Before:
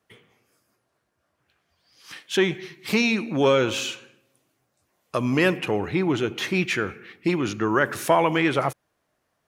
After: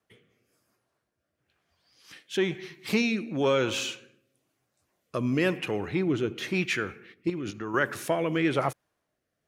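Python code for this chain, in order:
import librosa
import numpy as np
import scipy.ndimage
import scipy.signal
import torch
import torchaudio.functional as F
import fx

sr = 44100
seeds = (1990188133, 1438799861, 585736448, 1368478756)

y = fx.level_steps(x, sr, step_db=10, at=(7.12, 7.74))
y = fx.rotary(y, sr, hz=1.0)
y = F.gain(torch.from_numpy(y), -2.5).numpy()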